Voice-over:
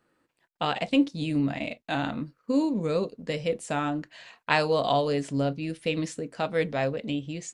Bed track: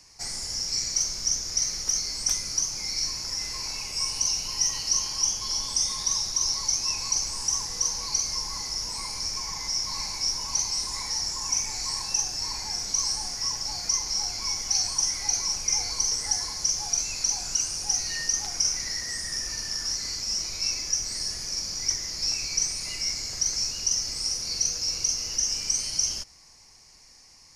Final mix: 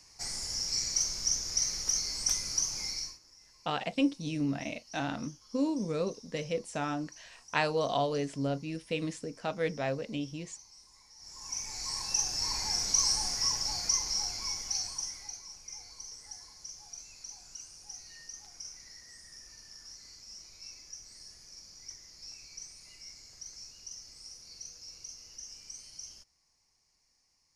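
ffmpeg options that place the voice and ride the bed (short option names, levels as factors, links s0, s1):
-filter_complex "[0:a]adelay=3050,volume=0.531[s0];[1:a]volume=14.1,afade=t=out:st=2.83:d=0.36:silence=0.0668344,afade=t=in:st=11.17:d=1.48:silence=0.0446684,afade=t=out:st=13.35:d=2.05:silence=0.105925[s1];[s0][s1]amix=inputs=2:normalize=0"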